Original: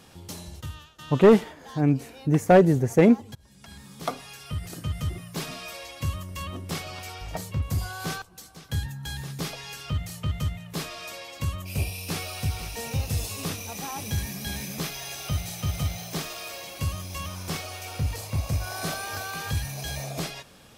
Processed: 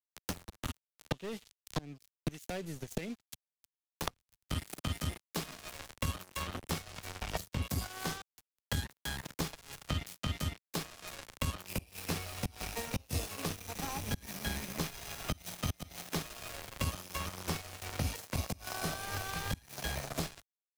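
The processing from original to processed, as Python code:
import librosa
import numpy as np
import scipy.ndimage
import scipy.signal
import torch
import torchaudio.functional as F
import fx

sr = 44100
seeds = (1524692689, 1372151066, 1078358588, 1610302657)

y = fx.peak_eq(x, sr, hz=120.0, db=-14.0, octaves=0.32)
y = np.sign(y) * np.maximum(np.abs(y) - 10.0 ** (-34.5 / 20.0), 0.0)
y = fx.gate_flip(y, sr, shuts_db=-20.0, range_db=-26)
y = fx.band_squash(y, sr, depth_pct=100)
y = y * librosa.db_to_amplitude(1.0)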